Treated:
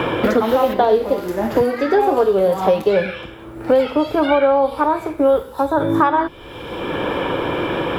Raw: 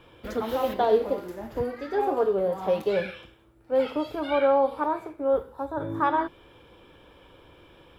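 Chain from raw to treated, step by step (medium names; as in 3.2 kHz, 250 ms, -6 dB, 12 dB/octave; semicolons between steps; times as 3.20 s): three bands compressed up and down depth 100%; trim +9 dB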